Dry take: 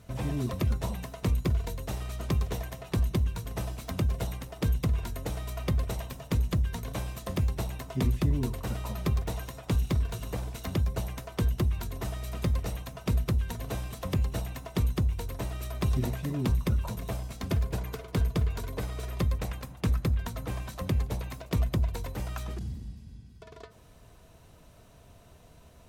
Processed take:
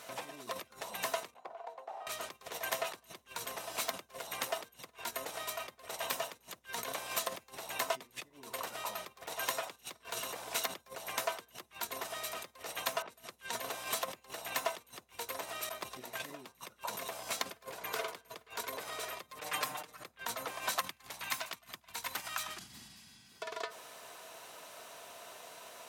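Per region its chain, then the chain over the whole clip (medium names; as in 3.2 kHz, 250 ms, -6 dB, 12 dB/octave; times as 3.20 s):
1.34–2.07 s: band-pass filter 760 Hz, Q 4.8 + compression 4:1, threshold -49 dBFS
13.02–13.53 s: level-controlled noise filter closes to 1.4 kHz, open at -22.5 dBFS + treble shelf 6 kHz +5 dB
15.69–16.20 s: expander -27 dBFS + compressor with a negative ratio -31 dBFS, ratio -0.5
19.28–20.04 s: comb 6.6 ms, depth 94% + upward compressor, threshold -37 dBFS
20.79–23.32 s: peaking EQ 480 Hz -14.5 dB 1.2 oct + feedback delay 75 ms, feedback 59%, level -22 dB
whole clip: compressor with a negative ratio -38 dBFS, ratio -1; high-pass 700 Hz 12 dB/octave; trim +5.5 dB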